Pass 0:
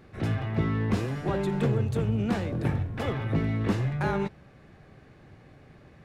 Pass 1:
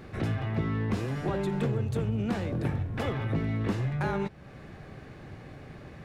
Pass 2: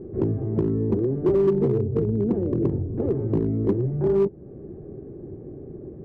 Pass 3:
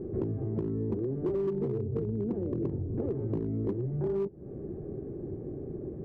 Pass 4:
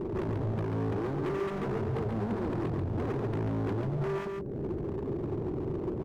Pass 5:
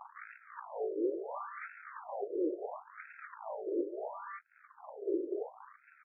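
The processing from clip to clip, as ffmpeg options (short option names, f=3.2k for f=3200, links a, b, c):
-af "acompressor=threshold=-41dB:ratio=2,volume=7dB"
-filter_complex "[0:a]lowpass=f=380:t=q:w=4.7,asplit=2[a][b];[b]aeval=exprs='0.112*(abs(mod(val(0)/0.112+3,4)-2)-1)':c=same,volume=-8dB[c];[a][c]amix=inputs=2:normalize=0"
-af "acompressor=threshold=-30dB:ratio=4"
-filter_complex "[0:a]volume=36dB,asoftclip=hard,volume=-36dB,asplit=2[a][b];[b]aecho=0:1:139:0.596[c];[a][c]amix=inputs=2:normalize=0,volume=5dB"
-af "tremolo=f=3.7:d=0.59,afftfilt=real='re*between(b*sr/1024,410*pow(1900/410,0.5+0.5*sin(2*PI*0.72*pts/sr))/1.41,410*pow(1900/410,0.5+0.5*sin(2*PI*0.72*pts/sr))*1.41)':imag='im*between(b*sr/1024,410*pow(1900/410,0.5+0.5*sin(2*PI*0.72*pts/sr))/1.41,410*pow(1900/410,0.5+0.5*sin(2*PI*0.72*pts/sr))*1.41)':win_size=1024:overlap=0.75,volume=4dB"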